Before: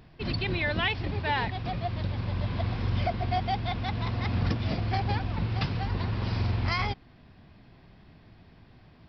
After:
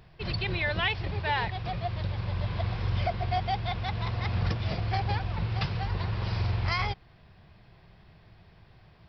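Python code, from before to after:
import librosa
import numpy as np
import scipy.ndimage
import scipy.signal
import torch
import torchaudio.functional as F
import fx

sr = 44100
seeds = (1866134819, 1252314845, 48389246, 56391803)

y = fx.peak_eq(x, sr, hz=260.0, db=-14.5, octaves=0.46)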